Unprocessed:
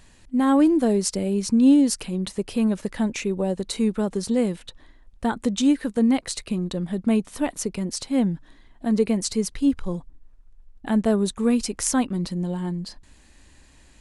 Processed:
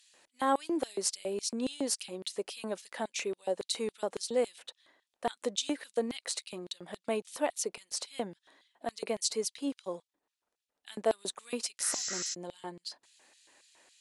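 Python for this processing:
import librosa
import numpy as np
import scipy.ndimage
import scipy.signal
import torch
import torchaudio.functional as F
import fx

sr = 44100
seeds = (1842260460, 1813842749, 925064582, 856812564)

y = fx.spec_repair(x, sr, seeds[0], start_s=11.86, length_s=0.45, low_hz=1200.0, high_hz=7800.0, source='before')
y = fx.cheby_harmonics(y, sr, harmonics=(2,), levels_db=(-36,), full_scale_db=-8.0)
y = fx.filter_lfo_highpass(y, sr, shape='square', hz=3.6, low_hz=540.0, high_hz=3500.0, q=1.4)
y = y * 10.0 ** (-5.0 / 20.0)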